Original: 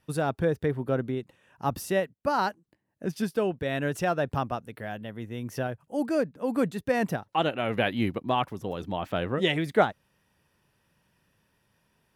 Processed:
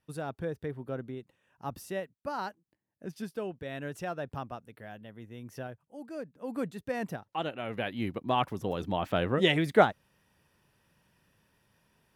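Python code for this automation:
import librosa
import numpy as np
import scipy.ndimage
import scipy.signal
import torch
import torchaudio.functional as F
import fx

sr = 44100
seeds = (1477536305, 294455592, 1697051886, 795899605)

y = fx.gain(x, sr, db=fx.line((5.7, -9.5), (6.0, -16.5), (6.54, -8.0), (7.91, -8.0), (8.51, 0.5)))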